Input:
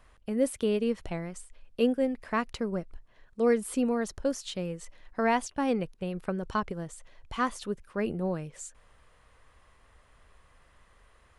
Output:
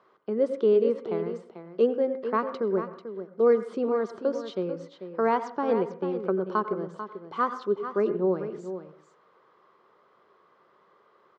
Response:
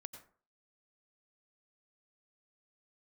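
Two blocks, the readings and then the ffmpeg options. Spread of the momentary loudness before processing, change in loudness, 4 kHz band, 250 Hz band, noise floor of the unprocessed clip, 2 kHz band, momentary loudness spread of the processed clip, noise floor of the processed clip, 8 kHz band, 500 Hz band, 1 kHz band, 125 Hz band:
16 LU, +3.5 dB, n/a, -1.0 dB, -62 dBFS, -3.0 dB, 14 LU, -63 dBFS, under -15 dB, +6.0 dB, +3.5 dB, -2.0 dB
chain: -filter_complex "[0:a]highpass=f=200:w=0.5412,highpass=f=200:w=1.3066,equalizer=f=260:t=q:w=4:g=-9,equalizer=f=380:t=q:w=4:g=10,equalizer=f=700:t=q:w=4:g=-4,equalizer=f=1.2k:t=q:w=4:g=4,equalizer=f=1.8k:t=q:w=4:g=-7,equalizer=f=2.6k:t=q:w=4:g=-7,lowpass=f=4.8k:w=0.5412,lowpass=f=4.8k:w=1.3066,aecho=1:1:442:0.299,asplit=2[a][b];[1:a]atrim=start_sample=2205,lowpass=2.1k[c];[b][c]afir=irnorm=-1:irlink=0,volume=6dB[d];[a][d]amix=inputs=2:normalize=0,volume=-3dB"

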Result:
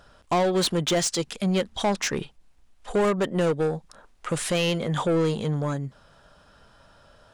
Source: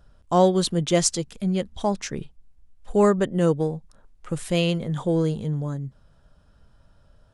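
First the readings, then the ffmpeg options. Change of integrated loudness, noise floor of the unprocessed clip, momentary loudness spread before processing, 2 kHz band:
-1.5 dB, -58 dBFS, 14 LU, +4.0 dB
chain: -filter_complex "[0:a]alimiter=limit=-15.5dB:level=0:latency=1:release=220,asplit=2[a][b];[b]highpass=f=720:p=1,volume=18dB,asoftclip=type=tanh:threshold=-15.5dB[c];[a][c]amix=inputs=2:normalize=0,lowpass=f=6.2k:p=1,volume=-6dB"

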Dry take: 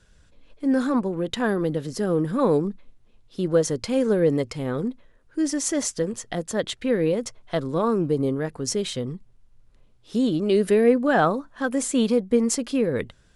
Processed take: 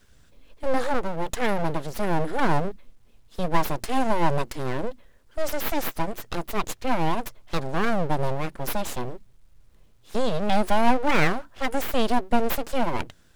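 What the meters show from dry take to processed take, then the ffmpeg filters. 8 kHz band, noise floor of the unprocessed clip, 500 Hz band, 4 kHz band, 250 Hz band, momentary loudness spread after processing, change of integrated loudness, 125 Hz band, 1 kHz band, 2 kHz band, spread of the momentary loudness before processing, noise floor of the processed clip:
-9.0 dB, -57 dBFS, -5.5 dB, -1.0 dB, -6.0 dB, 10 LU, -3.0 dB, -1.5 dB, +5.5 dB, +2.5 dB, 9 LU, -55 dBFS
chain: -af "aeval=exprs='abs(val(0))':c=same,acrusher=bits=9:dc=4:mix=0:aa=0.000001,volume=1.5dB"

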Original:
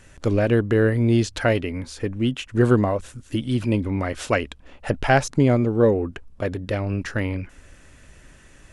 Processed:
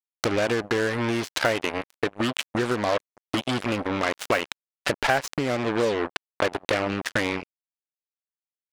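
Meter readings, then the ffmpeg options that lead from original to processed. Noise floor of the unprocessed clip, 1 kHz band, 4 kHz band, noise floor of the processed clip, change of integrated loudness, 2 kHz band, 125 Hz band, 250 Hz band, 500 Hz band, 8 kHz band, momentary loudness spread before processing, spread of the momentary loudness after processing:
-50 dBFS, +0.5 dB, +5.0 dB, under -85 dBFS, -4.0 dB, +1.5 dB, -12.5 dB, -6.5 dB, -3.5 dB, +1.0 dB, 12 LU, 6 LU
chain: -filter_complex "[0:a]acrusher=bits=3:mix=0:aa=0.5,acompressor=threshold=-28dB:ratio=10,asplit=2[a][b];[b]highpass=f=720:p=1,volume=19dB,asoftclip=type=tanh:threshold=-1dB[c];[a][c]amix=inputs=2:normalize=0,lowpass=f=5.1k:p=1,volume=-6dB"

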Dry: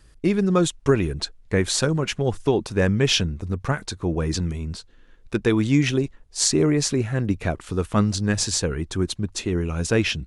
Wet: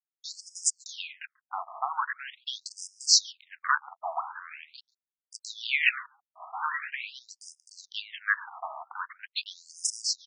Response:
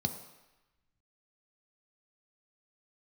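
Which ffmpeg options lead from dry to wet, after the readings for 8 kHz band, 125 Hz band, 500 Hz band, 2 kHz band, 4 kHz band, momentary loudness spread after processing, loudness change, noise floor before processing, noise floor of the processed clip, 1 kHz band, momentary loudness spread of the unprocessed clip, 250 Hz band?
-3.5 dB, under -40 dB, -26.5 dB, -0.5 dB, -3.5 dB, 21 LU, -7.0 dB, -52 dBFS, under -85 dBFS, 0.0 dB, 8 LU, under -40 dB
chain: -filter_complex "[0:a]aeval=exprs='sgn(val(0))*max(abs(val(0))-0.0211,0)':c=same,asplit=2[a][b];[b]adelay=139.9,volume=-26dB,highshelf=f=4k:g=-3.15[c];[a][c]amix=inputs=2:normalize=0,afftfilt=real='re*between(b*sr/1024,890*pow(7000/890,0.5+0.5*sin(2*PI*0.43*pts/sr))/1.41,890*pow(7000/890,0.5+0.5*sin(2*PI*0.43*pts/sr))*1.41)':imag='im*between(b*sr/1024,890*pow(7000/890,0.5+0.5*sin(2*PI*0.43*pts/sr))/1.41,890*pow(7000/890,0.5+0.5*sin(2*PI*0.43*pts/sr))*1.41)':win_size=1024:overlap=0.75,volume=8dB"

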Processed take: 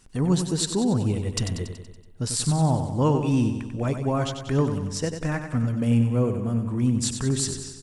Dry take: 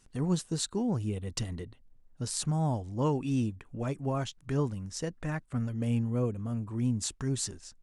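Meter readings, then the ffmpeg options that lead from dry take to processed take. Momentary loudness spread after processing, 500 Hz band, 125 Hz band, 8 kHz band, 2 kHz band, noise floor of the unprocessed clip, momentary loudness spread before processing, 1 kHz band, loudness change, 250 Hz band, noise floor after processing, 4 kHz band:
7 LU, +7.5 dB, +8.0 dB, +7.5 dB, +8.0 dB, -61 dBFS, 7 LU, +7.5 dB, +8.0 dB, +8.0 dB, -45 dBFS, +8.0 dB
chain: -af "bandreject=f=6.4k:w=20,aecho=1:1:94|188|282|376|470|564|658:0.398|0.227|0.129|0.0737|0.042|0.024|0.0137,acontrast=80"

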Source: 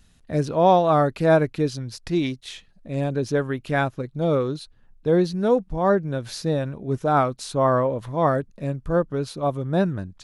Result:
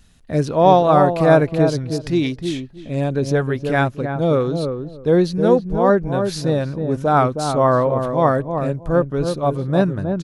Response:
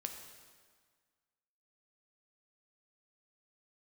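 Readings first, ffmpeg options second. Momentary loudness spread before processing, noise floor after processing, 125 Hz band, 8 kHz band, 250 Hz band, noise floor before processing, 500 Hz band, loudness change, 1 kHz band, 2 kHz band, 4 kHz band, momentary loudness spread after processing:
10 LU, -38 dBFS, +5.0 dB, +4.0 dB, +5.0 dB, -56 dBFS, +5.0 dB, +4.5 dB, +4.5 dB, +4.5 dB, +4.0 dB, 9 LU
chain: -filter_complex "[0:a]asplit=2[a][b];[b]adelay=316,lowpass=f=820:p=1,volume=-5dB,asplit=2[c][d];[d]adelay=316,lowpass=f=820:p=1,volume=0.2,asplit=2[e][f];[f]adelay=316,lowpass=f=820:p=1,volume=0.2[g];[a][c][e][g]amix=inputs=4:normalize=0,volume=4dB"

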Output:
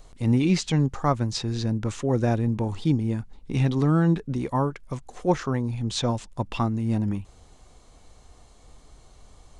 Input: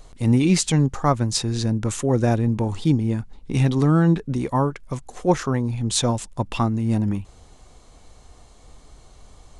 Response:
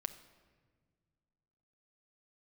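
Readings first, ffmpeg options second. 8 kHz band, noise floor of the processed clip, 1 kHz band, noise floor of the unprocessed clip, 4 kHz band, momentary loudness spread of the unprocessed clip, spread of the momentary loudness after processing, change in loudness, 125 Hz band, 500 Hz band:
-10.5 dB, -53 dBFS, -3.5 dB, -50 dBFS, -5.0 dB, 8 LU, 8 LU, -3.5 dB, -3.5 dB, -3.5 dB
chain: -filter_complex "[0:a]acrossover=split=6300[a][b];[b]acompressor=threshold=-53dB:ratio=4:attack=1:release=60[c];[a][c]amix=inputs=2:normalize=0,volume=-3.5dB"

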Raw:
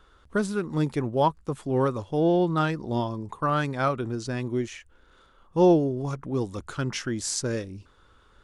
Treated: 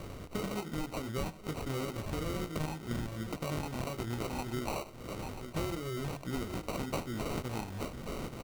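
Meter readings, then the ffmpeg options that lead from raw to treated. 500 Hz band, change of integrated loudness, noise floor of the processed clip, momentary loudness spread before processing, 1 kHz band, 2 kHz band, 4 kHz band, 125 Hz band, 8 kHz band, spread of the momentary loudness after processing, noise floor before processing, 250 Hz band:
-13.0 dB, -11.5 dB, -48 dBFS, 10 LU, -12.0 dB, -8.5 dB, -5.5 dB, -8.5 dB, -10.5 dB, 4 LU, -59 dBFS, -11.5 dB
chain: -filter_complex "[0:a]flanger=delay=16:depth=3.8:speed=2.4,asplit=2[a][b];[b]aecho=0:1:867|1734:0.075|0.0255[c];[a][c]amix=inputs=2:normalize=0,acrossover=split=700|2600[d][e][f];[d]acompressor=threshold=-27dB:ratio=4[g];[e]acompressor=threshold=-46dB:ratio=4[h];[f]acompressor=threshold=-56dB:ratio=4[i];[g][h][i]amix=inputs=3:normalize=0,aresample=11025,aresample=44100,tiltshelf=f=1.1k:g=-6,asplit=2[j][k];[k]aecho=0:1:77:0.119[l];[j][l]amix=inputs=2:normalize=0,aexciter=amount=14.9:drive=7.1:freq=2.3k,lowshelf=f=470:g=9,acompressor=threshold=-34dB:ratio=4,bandreject=f=4.3k:w=12,acrusher=samples=26:mix=1:aa=0.000001"

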